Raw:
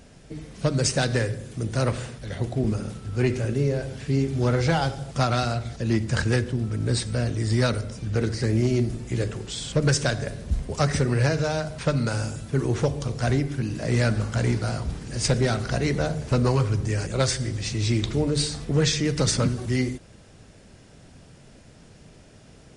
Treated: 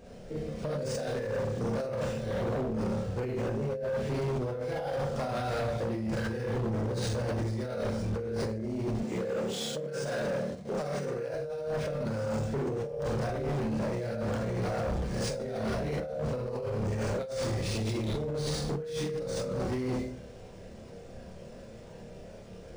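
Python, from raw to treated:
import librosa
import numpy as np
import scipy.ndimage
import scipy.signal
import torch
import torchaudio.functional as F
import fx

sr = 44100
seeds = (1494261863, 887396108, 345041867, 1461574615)

y = fx.peak_eq(x, sr, hz=510.0, db=12.0, octaves=0.97)
y = fx.rev_schroeder(y, sr, rt60_s=0.5, comb_ms=32, drr_db=-3.5)
y = fx.chorus_voices(y, sr, voices=6, hz=0.27, base_ms=27, depth_ms=1.0, mix_pct=40)
y = fx.over_compress(y, sr, threshold_db=-22.0, ratio=-1.0)
y = fx.highpass(y, sr, hz=150.0, slope=24, at=(9.03, 11.34))
y = np.clip(y, -10.0 ** (-20.0 / 20.0), 10.0 ** (-20.0 / 20.0))
y = np.interp(np.arange(len(y)), np.arange(len(y))[::3], y[::3])
y = y * librosa.db_to_amplitude(-8.0)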